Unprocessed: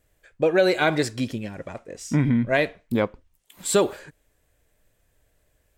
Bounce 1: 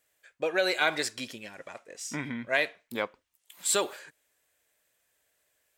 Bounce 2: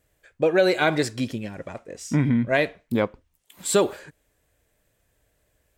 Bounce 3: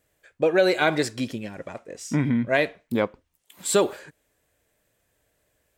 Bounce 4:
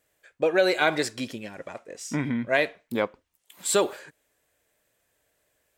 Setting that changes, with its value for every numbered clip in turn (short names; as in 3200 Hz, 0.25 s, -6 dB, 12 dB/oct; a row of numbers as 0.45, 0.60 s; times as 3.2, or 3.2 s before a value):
HPF, cutoff: 1400, 47, 160, 450 Hz